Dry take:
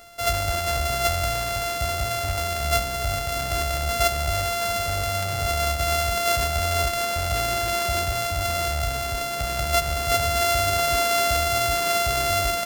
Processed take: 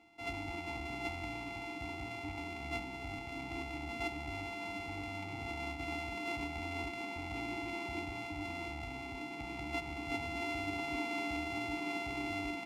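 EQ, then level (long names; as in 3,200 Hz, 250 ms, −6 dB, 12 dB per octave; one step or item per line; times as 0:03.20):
formant filter u
low-shelf EQ 80 Hz +10 dB
+3.0 dB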